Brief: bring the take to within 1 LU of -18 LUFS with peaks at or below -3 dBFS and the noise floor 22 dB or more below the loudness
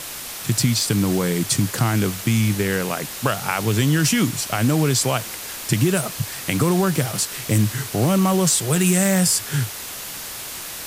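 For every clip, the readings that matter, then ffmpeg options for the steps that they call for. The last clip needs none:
noise floor -33 dBFS; noise floor target -43 dBFS; loudness -20.5 LUFS; peak level -4.0 dBFS; loudness target -18.0 LUFS
-> -af "afftdn=nr=10:nf=-33"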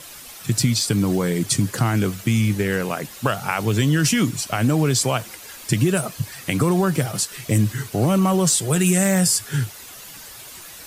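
noise floor -40 dBFS; noise floor target -43 dBFS
-> -af "afftdn=nr=6:nf=-40"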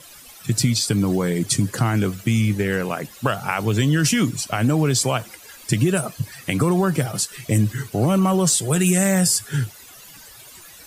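noise floor -44 dBFS; loudness -20.5 LUFS; peak level -4.5 dBFS; loudness target -18.0 LUFS
-> -af "volume=1.33,alimiter=limit=0.708:level=0:latency=1"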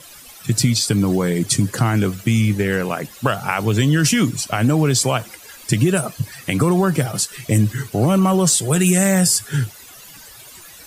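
loudness -18.0 LUFS; peak level -3.0 dBFS; noise floor -42 dBFS

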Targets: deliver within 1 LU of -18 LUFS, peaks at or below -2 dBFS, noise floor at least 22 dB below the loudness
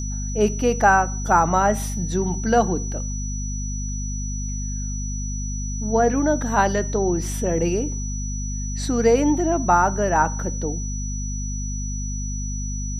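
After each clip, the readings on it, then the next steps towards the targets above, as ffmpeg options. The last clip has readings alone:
hum 50 Hz; highest harmonic 250 Hz; hum level -25 dBFS; steady tone 5.9 kHz; tone level -33 dBFS; loudness -22.5 LUFS; peak level -3.0 dBFS; loudness target -18.0 LUFS
-> -af "bandreject=f=50:t=h:w=6,bandreject=f=100:t=h:w=6,bandreject=f=150:t=h:w=6,bandreject=f=200:t=h:w=6,bandreject=f=250:t=h:w=6"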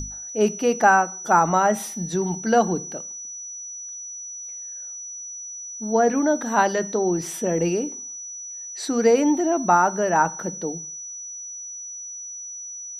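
hum not found; steady tone 5.9 kHz; tone level -33 dBFS
-> -af "bandreject=f=5900:w=30"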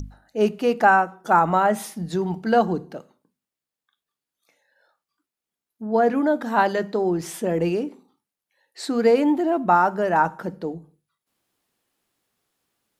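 steady tone not found; loudness -21.5 LUFS; peak level -4.0 dBFS; loudness target -18.0 LUFS
-> -af "volume=1.5,alimiter=limit=0.794:level=0:latency=1"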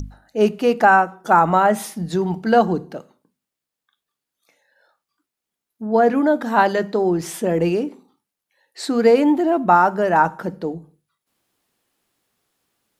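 loudness -18.0 LUFS; peak level -2.0 dBFS; noise floor -85 dBFS

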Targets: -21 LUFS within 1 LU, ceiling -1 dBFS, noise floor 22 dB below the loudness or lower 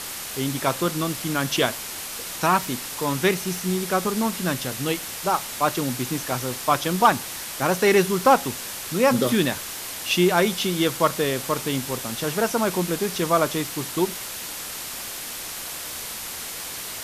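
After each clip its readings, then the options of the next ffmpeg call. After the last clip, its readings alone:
noise floor -34 dBFS; noise floor target -46 dBFS; loudness -24.0 LUFS; peak level -5.5 dBFS; loudness target -21.0 LUFS
-> -af "afftdn=nr=12:nf=-34"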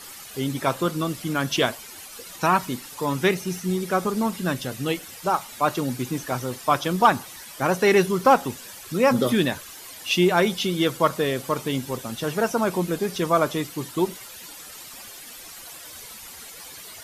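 noise floor -42 dBFS; noise floor target -46 dBFS
-> -af "afftdn=nr=6:nf=-42"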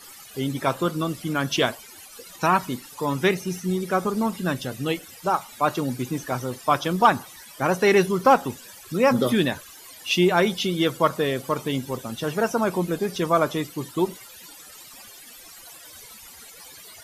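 noise floor -45 dBFS; noise floor target -46 dBFS
-> -af "afftdn=nr=6:nf=-45"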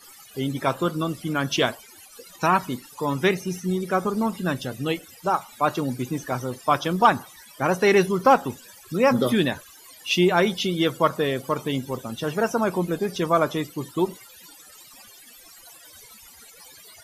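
noise floor -49 dBFS; loudness -24.0 LUFS; peak level -6.0 dBFS; loudness target -21.0 LUFS
-> -af "volume=1.41"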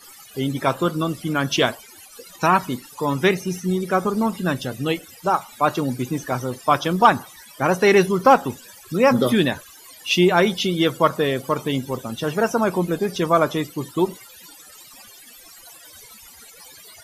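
loudness -21.0 LUFS; peak level -3.0 dBFS; noise floor -46 dBFS

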